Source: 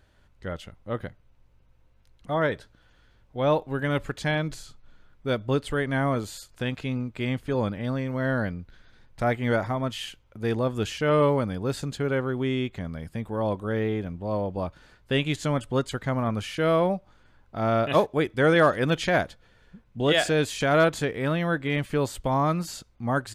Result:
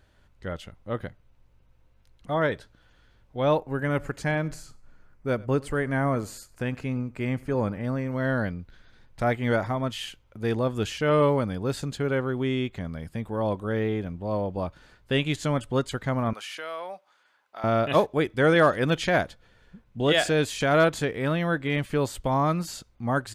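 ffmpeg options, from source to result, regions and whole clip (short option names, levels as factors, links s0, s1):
-filter_complex "[0:a]asettb=1/sr,asplit=3[s0][s1][s2];[s0]atrim=end=3.574[s3];[s1]atrim=start=3.57:end=8.12,asetpts=PTS-STARTPTS,afade=t=in:d=0.004:c=qsin,afade=t=out:st=4.546:d=0.004:c=qsin,equalizer=f=3500:w=2.7:g=-12,aecho=1:1:95|190:0.0708|0.0219,atrim=end_sample=200655[s4];[s2]atrim=start=8.116[s5];[s3][s4]acrossfade=d=0.004:c1=hsin:c2=qsin[s6];[s6][s5]acrossfade=d=0.004:c1=qsin:c2=hsin,asettb=1/sr,asplit=3[s7][s8][s9];[s7]atrim=end=16.334[s10];[s8]atrim=start=16.33:end=17.64,asetpts=PTS-STARTPTS,afade=t=in:d=0.004:c=qsin,afade=t=out:st=1.306:d=0.004:c=qsin,highpass=800,acompressor=threshold=0.02:ratio=2.5:attack=3.2:release=140:knee=1:detection=peak[s11];[s9]atrim=start=17.636[s12];[s10][s11]acrossfade=d=0.004:c1=hsin:c2=qsin[s13];[s13][s12]acrossfade=d=0.004:c1=qsin:c2=hsin"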